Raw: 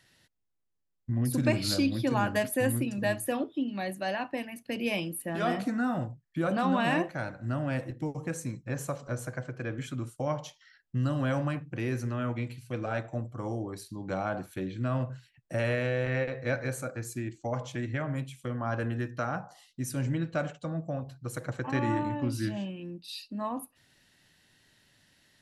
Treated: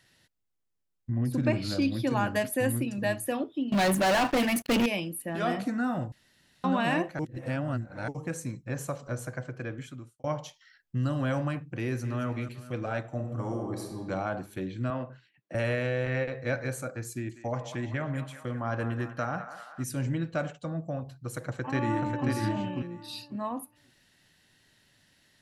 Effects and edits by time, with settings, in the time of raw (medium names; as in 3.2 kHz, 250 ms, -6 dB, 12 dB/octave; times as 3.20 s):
1.10–1.82 s: low-pass 2.5 kHz 6 dB/octave
3.72–4.86 s: waveshaping leveller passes 5
6.12–6.64 s: room tone
7.19–8.08 s: reverse
9.58–10.24 s: fade out
11.82–12.26 s: echo throw 220 ms, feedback 55%, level -12 dB
13.13–14.00 s: reverb throw, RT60 1.6 s, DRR 2 dB
14.90–15.55 s: band-pass 210–3300 Hz
17.10–19.84 s: band-passed feedback delay 193 ms, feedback 65%, band-pass 1.3 kHz, level -8.5 dB
21.39–22.28 s: echo throw 540 ms, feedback 15%, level -3.5 dB